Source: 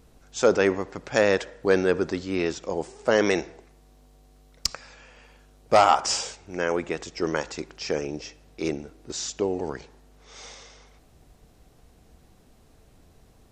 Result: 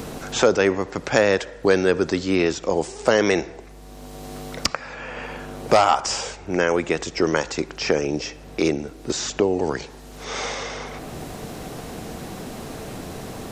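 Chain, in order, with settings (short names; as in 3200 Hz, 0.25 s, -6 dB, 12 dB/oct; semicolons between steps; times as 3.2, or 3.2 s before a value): three-band squash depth 70%; gain +6 dB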